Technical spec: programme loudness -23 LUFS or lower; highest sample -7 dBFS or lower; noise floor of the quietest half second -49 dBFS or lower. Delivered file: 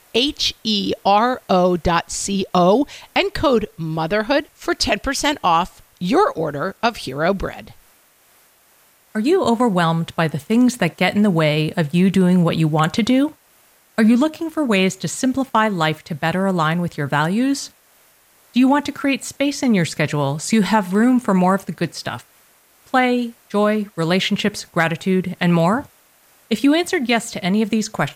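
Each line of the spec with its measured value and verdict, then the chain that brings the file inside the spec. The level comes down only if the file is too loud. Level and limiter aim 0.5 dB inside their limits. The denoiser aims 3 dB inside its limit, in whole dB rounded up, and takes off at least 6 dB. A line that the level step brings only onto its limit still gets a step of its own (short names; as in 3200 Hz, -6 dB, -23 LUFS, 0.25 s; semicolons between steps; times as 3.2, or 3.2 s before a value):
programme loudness -18.5 LUFS: fail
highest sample -4.5 dBFS: fail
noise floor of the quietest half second -55 dBFS: OK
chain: gain -5 dB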